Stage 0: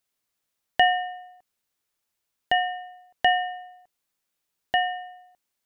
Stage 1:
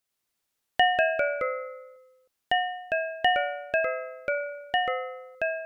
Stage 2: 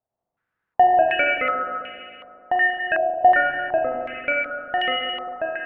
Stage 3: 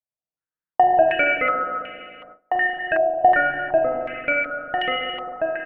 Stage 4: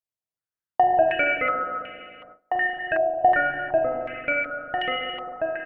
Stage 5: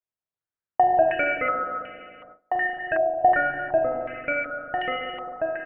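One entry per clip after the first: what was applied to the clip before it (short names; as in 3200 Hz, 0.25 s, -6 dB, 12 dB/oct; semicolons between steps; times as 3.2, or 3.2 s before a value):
echoes that change speed 96 ms, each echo -2 st, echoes 3; gain -2.5 dB
octaver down 1 oct, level 0 dB; spring tank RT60 2.8 s, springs 36/44 ms, chirp 70 ms, DRR 0 dB; stepped low-pass 2.7 Hz 720–2800 Hz
gate with hold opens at -36 dBFS; low shelf 370 Hz +4 dB; comb 6.4 ms, depth 48%
bell 95 Hz +9 dB 0.43 oct; gain -3 dB
LPF 2200 Hz 12 dB/oct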